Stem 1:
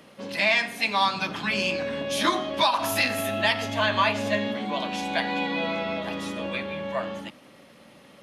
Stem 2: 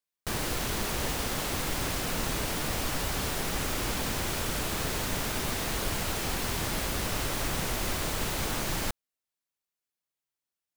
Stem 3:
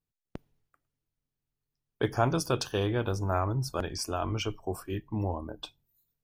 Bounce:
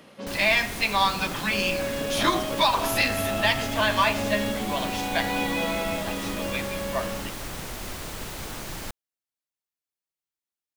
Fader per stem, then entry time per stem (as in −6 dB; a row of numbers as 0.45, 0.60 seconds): +0.5, −4.5, −10.5 decibels; 0.00, 0.00, 0.00 seconds